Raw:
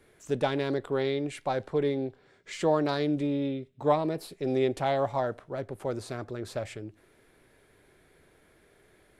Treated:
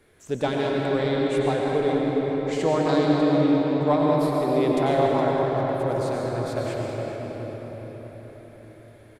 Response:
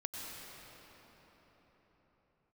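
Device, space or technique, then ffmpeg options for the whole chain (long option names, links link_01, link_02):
cathedral: -filter_complex "[1:a]atrim=start_sample=2205[link_01];[0:a][link_01]afir=irnorm=-1:irlink=0,asplit=2[link_02][link_03];[link_03]adelay=415,lowpass=frequency=3800:poles=1,volume=-9dB,asplit=2[link_04][link_05];[link_05]adelay=415,lowpass=frequency=3800:poles=1,volume=0.54,asplit=2[link_06][link_07];[link_07]adelay=415,lowpass=frequency=3800:poles=1,volume=0.54,asplit=2[link_08][link_09];[link_09]adelay=415,lowpass=frequency=3800:poles=1,volume=0.54,asplit=2[link_10][link_11];[link_11]adelay=415,lowpass=frequency=3800:poles=1,volume=0.54,asplit=2[link_12][link_13];[link_13]adelay=415,lowpass=frequency=3800:poles=1,volume=0.54[link_14];[link_02][link_04][link_06][link_08][link_10][link_12][link_14]amix=inputs=7:normalize=0,volume=5dB"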